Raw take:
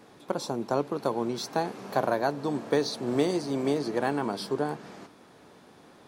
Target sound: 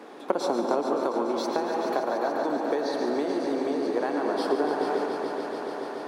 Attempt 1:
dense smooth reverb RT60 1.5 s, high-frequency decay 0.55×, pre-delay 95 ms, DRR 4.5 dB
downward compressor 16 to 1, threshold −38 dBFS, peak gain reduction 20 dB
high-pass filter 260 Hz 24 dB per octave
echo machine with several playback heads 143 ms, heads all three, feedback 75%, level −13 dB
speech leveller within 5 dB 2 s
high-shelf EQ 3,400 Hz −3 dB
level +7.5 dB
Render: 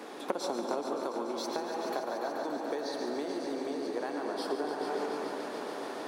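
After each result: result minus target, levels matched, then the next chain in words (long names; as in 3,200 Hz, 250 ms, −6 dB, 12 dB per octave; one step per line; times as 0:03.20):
downward compressor: peak gain reduction +8.5 dB; 8,000 Hz band +6.5 dB
dense smooth reverb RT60 1.5 s, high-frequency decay 0.55×, pre-delay 95 ms, DRR 4.5 dB
downward compressor 16 to 1, threshold −29 dBFS, peak gain reduction 11.5 dB
high-pass filter 260 Hz 24 dB per octave
echo machine with several playback heads 143 ms, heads all three, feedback 75%, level −13 dB
speech leveller within 5 dB 2 s
high-shelf EQ 3,400 Hz −3 dB
level +7.5 dB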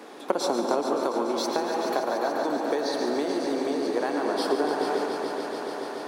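8,000 Hz band +6.5 dB
dense smooth reverb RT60 1.5 s, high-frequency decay 0.55×, pre-delay 95 ms, DRR 4.5 dB
downward compressor 16 to 1, threshold −29 dBFS, peak gain reduction 11.5 dB
high-pass filter 260 Hz 24 dB per octave
echo machine with several playback heads 143 ms, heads all three, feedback 75%, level −13 dB
speech leveller within 5 dB 2 s
high-shelf EQ 3,400 Hz −11.5 dB
level +7.5 dB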